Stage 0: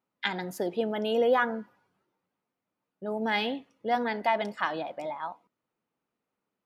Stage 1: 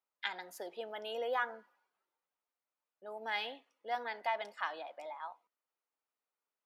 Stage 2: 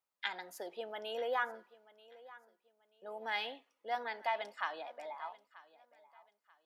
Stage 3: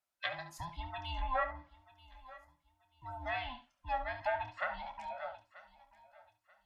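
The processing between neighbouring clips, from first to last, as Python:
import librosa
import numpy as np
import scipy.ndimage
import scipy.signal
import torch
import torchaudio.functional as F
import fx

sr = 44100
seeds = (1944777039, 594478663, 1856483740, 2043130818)

y1 = scipy.signal.sosfilt(scipy.signal.butter(2, 630.0, 'highpass', fs=sr, output='sos'), x)
y1 = y1 * 10.0 ** (-7.5 / 20.0)
y2 = fx.echo_feedback(y1, sr, ms=935, feedback_pct=30, wet_db=-20.0)
y3 = fx.band_invert(y2, sr, width_hz=500)
y3 = fx.room_early_taps(y3, sr, ms=(27, 71), db=(-10.5, -12.0))
y3 = fx.env_lowpass_down(y3, sr, base_hz=2200.0, full_db=-33.0)
y3 = y3 * 10.0 ** (1.0 / 20.0)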